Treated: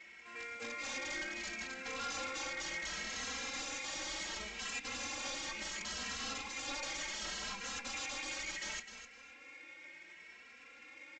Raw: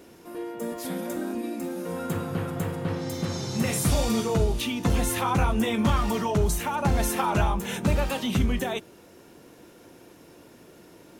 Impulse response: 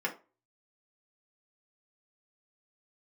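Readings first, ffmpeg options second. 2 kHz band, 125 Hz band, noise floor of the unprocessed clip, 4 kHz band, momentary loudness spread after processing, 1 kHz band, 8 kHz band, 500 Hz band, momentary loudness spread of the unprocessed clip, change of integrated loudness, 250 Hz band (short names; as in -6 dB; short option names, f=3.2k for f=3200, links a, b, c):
-4.0 dB, -33.0 dB, -52 dBFS, -4.5 dB, 14 LU, -16.0 dB, -7.0 dB, -20.0 dB, 8 LU, -13.0 dB, -24.5 dB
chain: -filter_complex "[0:a]aeval=exprs='val(0)+0.00282*(sin(2*PI*60*n/s)+sin(2*PI*2*60*n/s)/2+sin(2*PI*3*60*n/s)/3+sin(2*PI*4*60*n/s)/4+sin(2*PI*5*60*n/s)/5)':c=same,bandpass=f=2.2k:t=q:w=7.7:csg=0,alimiter=level_in=14.5dB:limit=-24dB:level=0:latency=1:release=417,volume=-14.5dB,aeval=exprs='(mod(316*val(0)+1,2)-1)/316':c=same,aecho=1:1:3.7:0.98,aresample=16000,acrusher=bits=3:mode=log:mix=0:aa=0.000001,aresample=44100,aecho=1:1:256|512|768:0.316|0.0822|0.0214,asplit=2[a][b];[b]adelay=2.7,afreqshift=0.69[c];[a][c]amix=inputs=2:normalize=1,volume=15dB"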